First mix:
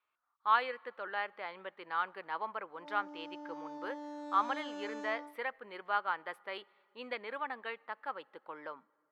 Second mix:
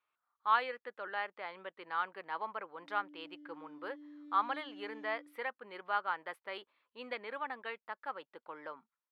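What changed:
background: add vowel filter i; reverb: off

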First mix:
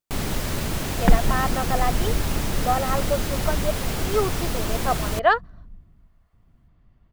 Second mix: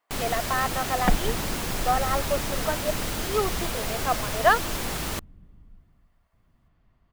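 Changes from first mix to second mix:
speech: entry -0.80 s; master: add bass shelf 360 Hz -7.5 dB

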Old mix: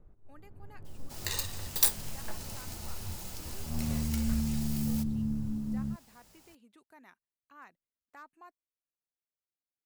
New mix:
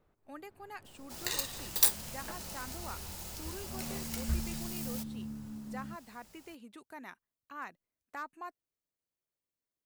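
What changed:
speech +9.5 dB; first sound: add tilt EQ +4 dB/octave

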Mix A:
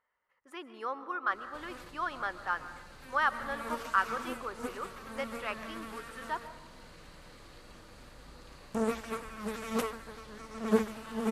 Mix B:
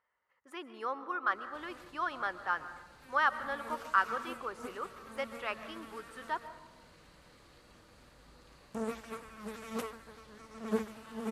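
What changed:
background -6.0 dB; master: add high-pass 41 Hz

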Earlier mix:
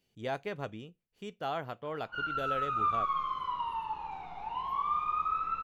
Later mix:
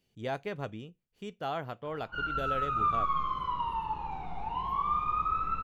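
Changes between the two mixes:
background: add bass shelf 450 Hz +9.5 dB; master: add bass shelf 220 Hz +4 dB

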